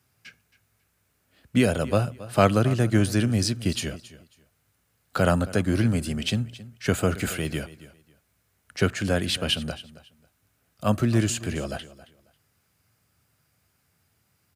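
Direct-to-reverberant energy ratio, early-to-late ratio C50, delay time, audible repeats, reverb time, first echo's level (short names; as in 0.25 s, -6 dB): none, none, 0.272 s, 2, none, -17.5 dB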